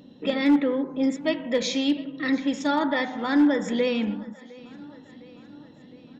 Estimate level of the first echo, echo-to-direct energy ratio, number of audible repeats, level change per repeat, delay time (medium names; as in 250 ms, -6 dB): -22.0 dB, -20.0 dB, 3, -4.5 dB, 709 ms